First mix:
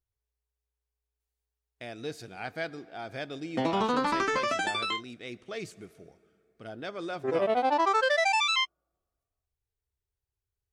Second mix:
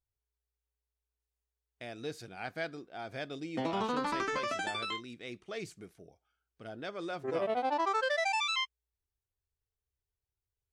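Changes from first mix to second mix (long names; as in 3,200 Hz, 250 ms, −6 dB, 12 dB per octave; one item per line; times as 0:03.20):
background −6.0 dB
reverb: off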